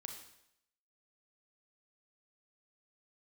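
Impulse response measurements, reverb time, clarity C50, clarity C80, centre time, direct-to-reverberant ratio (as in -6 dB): 0.80 s, 6.0 dB, 8.5 dB, 28 ms, 3.0 dB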